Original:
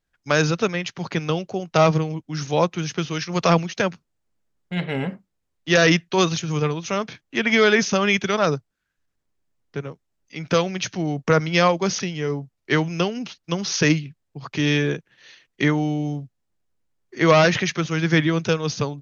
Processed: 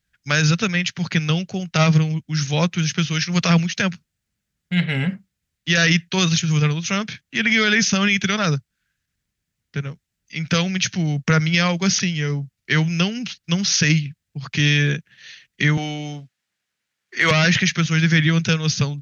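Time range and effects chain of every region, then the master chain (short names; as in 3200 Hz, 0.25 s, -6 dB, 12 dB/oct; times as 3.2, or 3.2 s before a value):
15.77–17.31 HPF 350 Hz 6 dB/oct + overdrive pedal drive 13 dB, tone 3200 Hz, clips at -4 dBFS
whole clip: HPF 42 Hz; band shelf 570 Hz -12 dB 2.4 oct; limiter -13.5 dBFS; gain +7 dB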